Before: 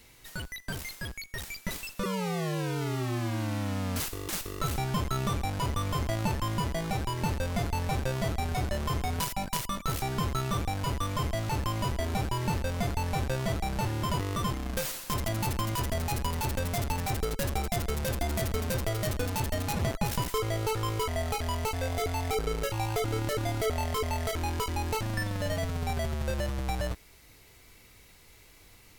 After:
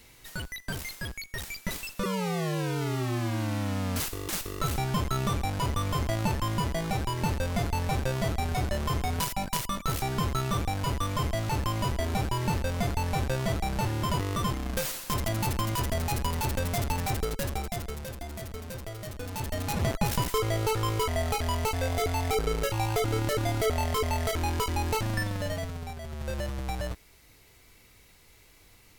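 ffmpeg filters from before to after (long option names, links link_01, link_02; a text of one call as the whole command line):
ffmpeg -i in.wav -af "volume=21dB,afade=type=out:start_time=17.08:duration=1.05:silence=0.316228,afade=type=in:start_time=19.15:duration=0.79:silence=0.281838,afade=type=out:start_time=25.1:duration=0.9:silence=0.237137,afade=type=in:start_time=26:duration=0.35:silence=0.375837" out.wav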